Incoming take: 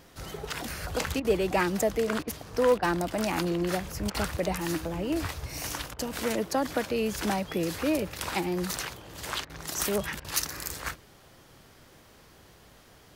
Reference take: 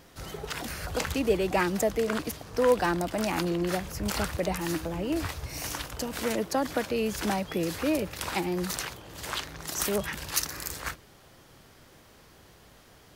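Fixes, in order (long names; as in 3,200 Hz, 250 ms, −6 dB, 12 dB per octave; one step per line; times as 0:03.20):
clipped peaks rebuilt −15.5 dBFS
repair the gap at 0:01.20/0:02.23/0:02.78/0:04.10/0:05.94/0:09.45/0:10.20, 45 ms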